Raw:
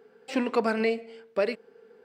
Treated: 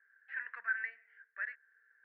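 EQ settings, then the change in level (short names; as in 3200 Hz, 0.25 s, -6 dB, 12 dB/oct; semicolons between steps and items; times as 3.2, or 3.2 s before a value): Butterworth band-pass 1700 Hz, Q 5.3; air absorption 120 m; +6.0 dB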